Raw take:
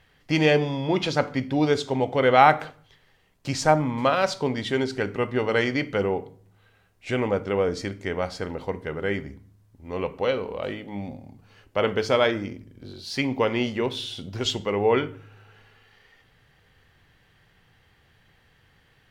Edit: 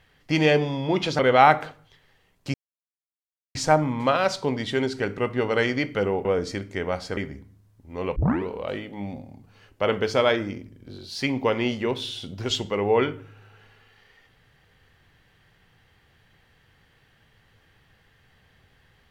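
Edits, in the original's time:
0:01.19–0:02.18: remove
0:03.53: splice in silence 1.01 s
0:06.23–0:07.55: remove
0:08.47–0:09.12: remove
0:10.11: tape start 0.32 s

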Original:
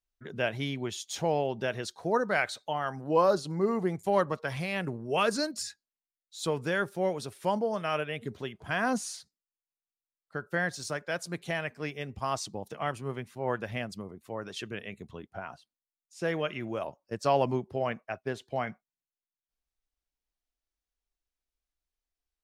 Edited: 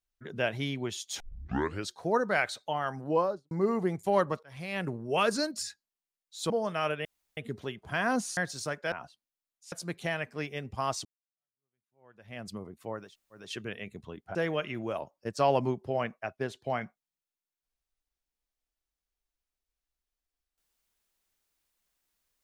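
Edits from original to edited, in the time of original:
0:01.20: tape start 0.70 s
0:03.03–0:03.51: fade out and dull
0:04.43–0:04.83: fade in
0:06.50–0:07.59: remove
0:08.14: splice in room tone 0.32 s
0:09.14–0:10.61: remove
0:12.49–0:13.91: fade in exponential
0:14.48: splice in room tone 0.38 s, crossfade 0.24 s
0:15.41–0:16.21: move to 0:11.16

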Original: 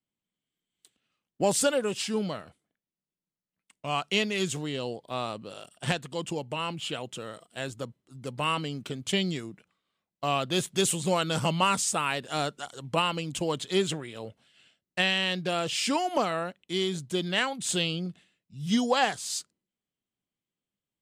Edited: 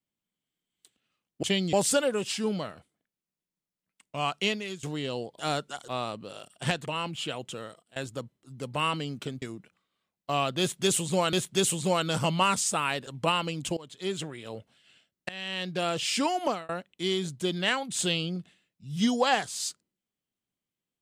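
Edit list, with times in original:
0:04.09–0:04.53: fade out, to −18.5 dB
0:06.07–0:06.50: remove
0:07.25–0:07.60: fade out, to −22 dB
0:09.06–0:09.36: move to 0:01.43
0:10.54–0:11.27: repeat, 2 plays
0:12.28–0:12.77: move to 0:05.09
0:13.47–0:14.20: fade in, from −21.5 dB
0:14.99–0:15.53: fade in, from −23 dB
0:16.14–0:16.39: fade out

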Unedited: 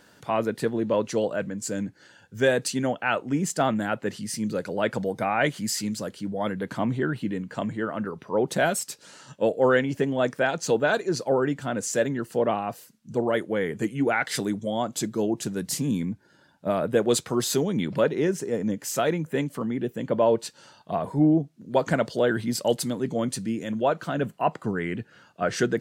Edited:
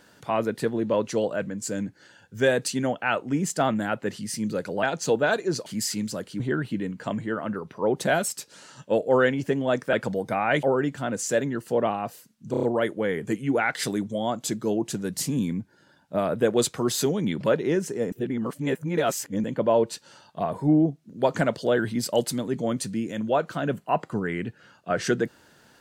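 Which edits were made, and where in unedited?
0:04.83–0:05.53: swap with 0:10.44–0:11.27
0:06.27–0:06.91: remove
0:13.15: stutter 0.03 s, 5 plays
0:18.64–0:19.96: reverse

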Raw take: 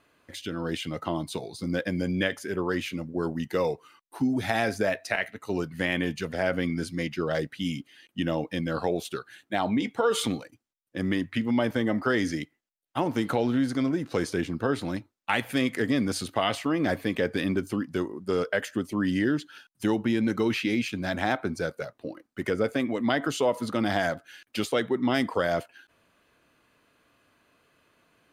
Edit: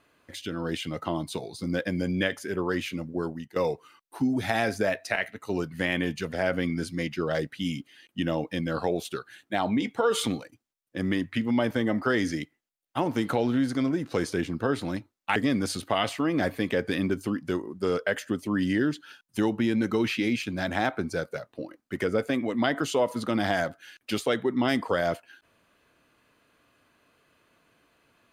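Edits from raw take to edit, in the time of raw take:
0:03.15–0:03.56: fade out, to −18.5 dB
0:15.36–0:15.82: remove

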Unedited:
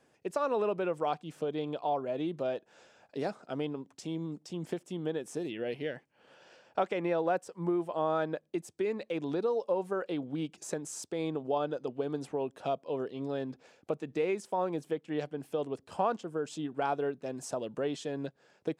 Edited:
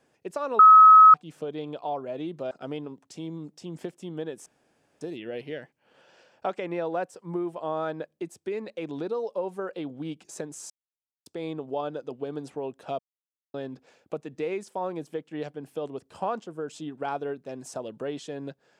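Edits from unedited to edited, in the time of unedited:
0:00.59–0:01.14: beep over 1,280 Hz −8.5 dBFS
0:02.51–0:03.39: remove
0:05.34: splice in room tone 0.55 s
0:11.03: splice in silence 0.56 s
0:12.76–0:13.31: silence

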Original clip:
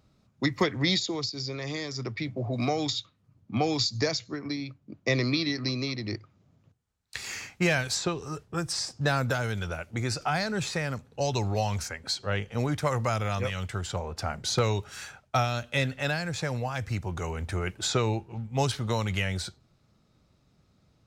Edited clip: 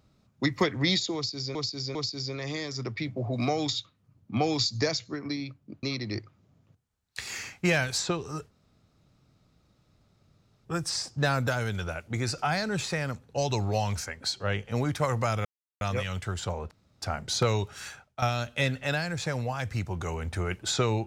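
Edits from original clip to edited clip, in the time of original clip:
0:01.15–0:01.55: repeat, 3 plays
0:05.03–0:05.80: remove
0:08.48: splice in room tone 2.14 s
0:13.28: splice in silence 0.36 s
0:14.18: splice in room tone 0.31 s
0:15.05–0:15.38: fade out, to −12 dB

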